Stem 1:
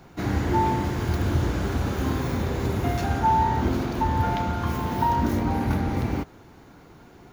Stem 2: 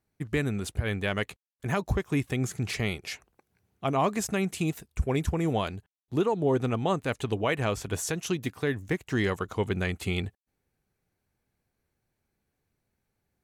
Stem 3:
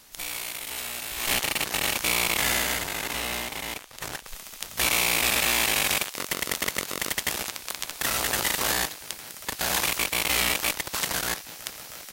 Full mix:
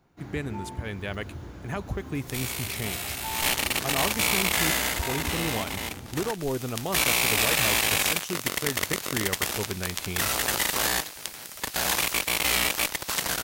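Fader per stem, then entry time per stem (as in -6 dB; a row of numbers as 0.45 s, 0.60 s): -16.5 dB, -4.5 dB, 0.0 dB; 0.00 s, 0.00 s, 2.15 s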